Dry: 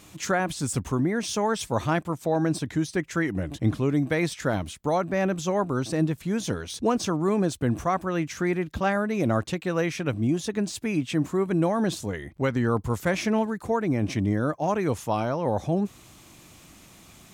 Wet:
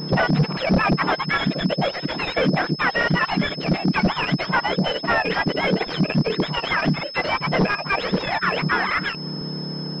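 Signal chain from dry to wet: spectrum mirrored in octaves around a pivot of 790 Hz; in parallel at +3 dB: compressor 5:1, threshold -40 dBFS, peak gain reduction 19.5 dB; on the sum: wavefolder -19.5 dBFS; air absorption 120 m; speed mistake 45 rpm record played at 78 rpm; stuck buffer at 0.48/2.99/6.94/9.32, samples 2048, times 1; pulse-width modulation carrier 5200 Hz; gain +8.5 dB

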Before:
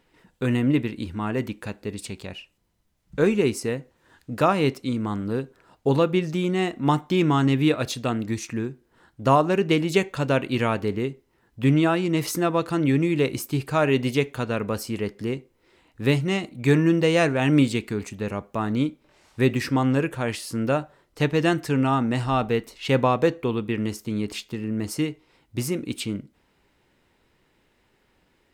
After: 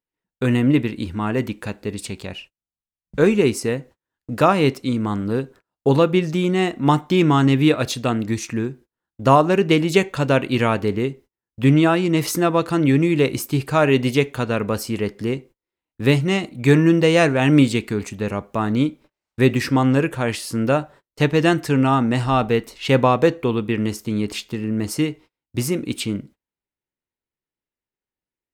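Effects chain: gate -46 dBFS, range -34 dB; gain +4.5 dB

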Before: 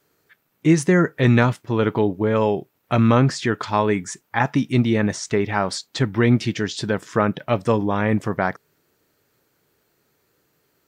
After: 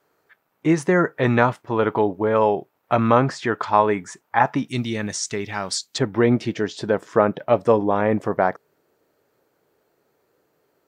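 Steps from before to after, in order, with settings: bell 840 Hz +12.5 dB 2.5 oct, from 4.68 s 7400 Hz, from 5.98 s 600 Hz; gain -7.5 dB

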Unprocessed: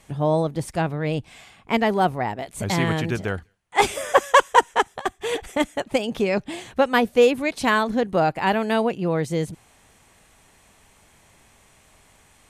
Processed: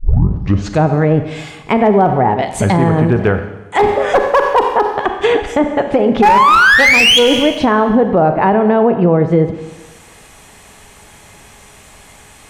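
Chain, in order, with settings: tape start at the beginning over 0.85 s; treble ducked by the level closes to 1000 Hz, closed at -19.5 dBFS; painted sound rise, 6.22–7.19, 790–3400 Hz -13 dBFS; resonator 420 Hz, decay 0.23 s, harmonics all, mix 60%; one-sided clip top -21.5 dBFS, bottom -15.5 dBFS; Schroeder reverb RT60 1.1 s, combs from 30 ms, DRR 9 dB; maximiser +22 dB; gain -1 dB

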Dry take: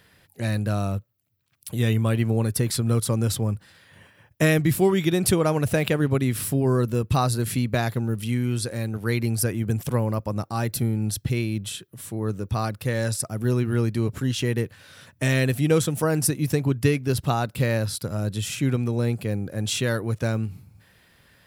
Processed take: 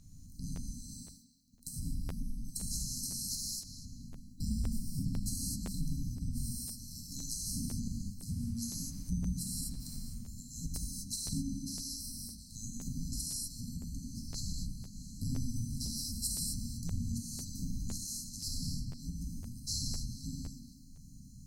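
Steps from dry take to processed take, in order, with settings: band-swap scrambler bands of 2000 Hz; on a send: narrowing echo 0.237 s, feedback 81%, band-pass 1100 Hz, level -5 dB; on the sum: FFT band-reject 280–4000 Hz; 8.29–10.03 requantised 12-bit, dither triangular; RIAA curve playback; non-linear reverb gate 0.28 s flat, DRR -4.5 dB; compressor 2:1, threshold -44 dBFS, peak gain reduction 15.5 dB; low shelf 170 Hz -6 dB; crackling interface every 0.51 s, samples 512, repeat, from 0.55; gain +6.5 dB

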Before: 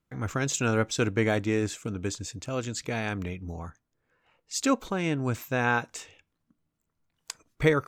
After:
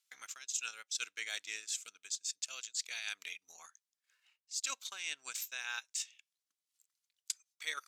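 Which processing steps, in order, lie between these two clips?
band-pass 4400 Hz, Q 0.88; transient shaper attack +3 dB, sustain -10 dB; differentiator; reverse; compressor 10:1, threshold -50 dBFS, peak gain reduction 22.5 dB; reverse; gain +14 dB

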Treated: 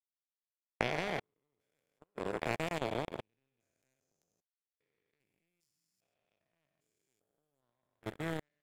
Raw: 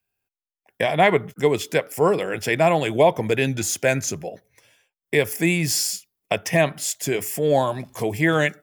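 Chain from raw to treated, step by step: stepped spectrum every 0.4 s; outdoor echo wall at 23 m, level -17 dB; level quantiser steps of 24 dB; power-law curve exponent 2; gain -1.5 dB

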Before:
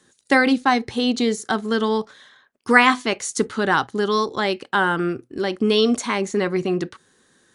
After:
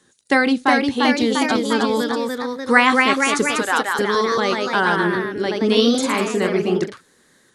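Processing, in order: 3.57–3.99 HPF 640 Hz 12 dB/oct; echoes that change speed 0.383 s, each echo +1 st, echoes 3

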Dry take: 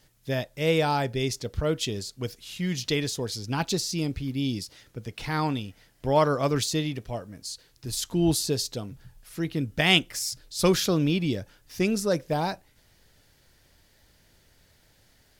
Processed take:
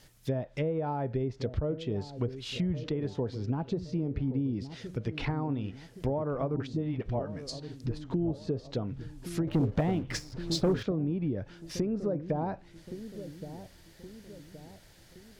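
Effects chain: 6.56–8.01 dispersion highs, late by 41 ms, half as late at 350 Hz; in parallel at -5.5 dB: overloaded stage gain 17 dB; on the sum: compressor 16:1, threshold -26 dBFS, peak gain reduction 15 dB; treble ducked by the level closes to 670 Hz, closed at -25.5 dBFS; dark delay 1.12 s, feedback 46%, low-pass 630 Hz, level -11 dB; 9.47–10.83 sample leveller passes 2

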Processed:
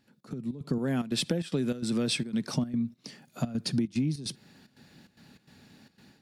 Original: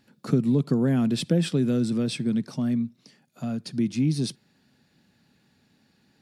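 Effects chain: 0.78–2.54 low shelf 360 Hz -9 dB; compressor 16:1, threshold -33 dBFS, peak gain reduction 18 dB; step gate "xx.xx.xxxx.x" 148 bpm -12 dB; AGC gain up to 14 dB; gain -5.5 dB

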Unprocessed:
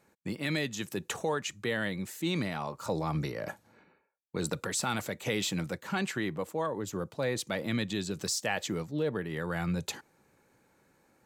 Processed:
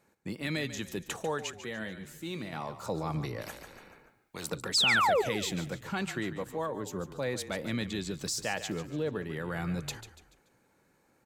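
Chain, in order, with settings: 1.57–2.53 resonator 73 Hz, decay 0.2 s, harmonics odd, mix 60%; 4.74–5.22 painted sound fall 380–5500 Hz -23 dBFS; 8.16–8.73 crackle 71/s -40 dBFS; on a send: frequency-shifting echo 0.144 s, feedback 40%, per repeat -33 Hz, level -12 dB; 3.41–4.5 on the sum: spectral compressor 2:1; gain -2 dB

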